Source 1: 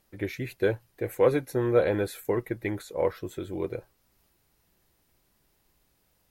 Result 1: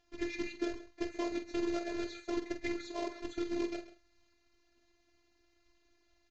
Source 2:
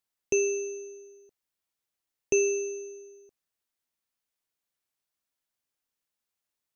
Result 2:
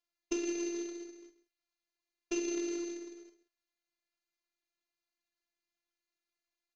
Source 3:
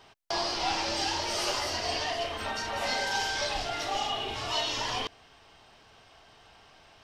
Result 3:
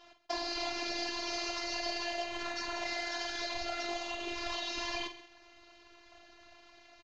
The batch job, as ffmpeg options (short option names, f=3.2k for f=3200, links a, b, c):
-filter_complex "[0:a]afftfilt=real='hypot(re,im)*cos(2*PI*random(0))':imag='hypot(re,im)*sin(2*PI*random(1))':win_size=512:overlap=0.75,acompressor=threshold=-37dB:ratio=10,aresample=16000,acrusher=bits=2:mode=log:mix=0:aa=0.000001,aresample=44100,afftfilt=real='hypot(re,im)*cos(PI*b)':imag='0':win_size=512:overlap=0.75,lowpass=f=6.2k:w=0.5412,lowpass=f=6.2k:w=1.3066,asplit=2[a][b];[b]adelay=46,volume=-9.5dB[c];[a][c]amix=inputs=2:normalize=0,asplit=2[d][e];[e]aecho=0:1:134:0.178[f];[d][f]amix=inputs=2:normalize=0,volume=7dB"